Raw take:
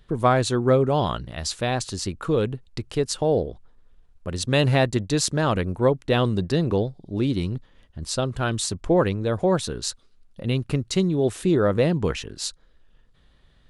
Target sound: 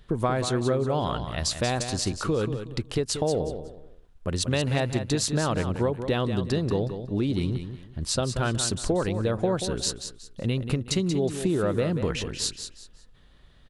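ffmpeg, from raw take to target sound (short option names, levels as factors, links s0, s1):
-filter_complex "[0:a]acompressor=threshold=0.0631:ratio=6,asplit=2[s0][s1];[s1]aecho=0:1:184|368|552:0.355|0.0993|0.0278[s2];[s0][s2]amix=inputs=2:normalize=0,volume=1.26"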